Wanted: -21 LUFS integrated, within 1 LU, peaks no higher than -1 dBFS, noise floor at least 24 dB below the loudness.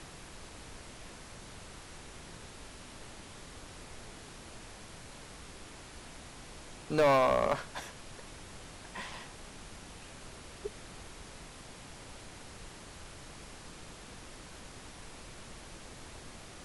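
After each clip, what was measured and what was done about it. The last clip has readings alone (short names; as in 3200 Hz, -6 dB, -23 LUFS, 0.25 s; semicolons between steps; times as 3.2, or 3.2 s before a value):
clipped 0.3%; flat tops at -21.0 dBFS; noise floor -50 dBFS; noise floor target -64 dBFS; loudness -39.5 LUFS; peak -21.0 dBFS; loudness target -21.0 LUFS
-> clip repair -21 dBFS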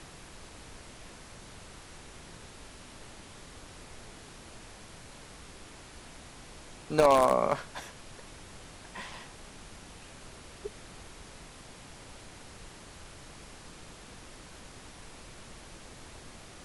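clipped 0.0%; noise floor -50 dBFS; noise floor target -53 dBFS
-> noise print and reduce 6 dB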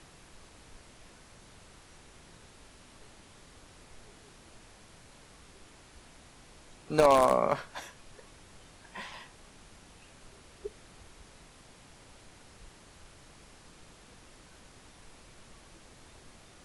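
noise floor -56 dBFS; loudness -28.5 LUFS; peak -12.0 dBFS; loudness target -21.0 LUFS
-> gain +7.5 dB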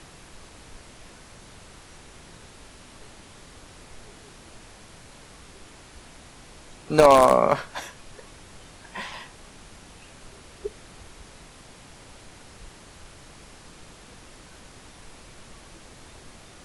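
loudness -21.0 LUFS; peak -4.5 dBFS; noise floor -49 dBFS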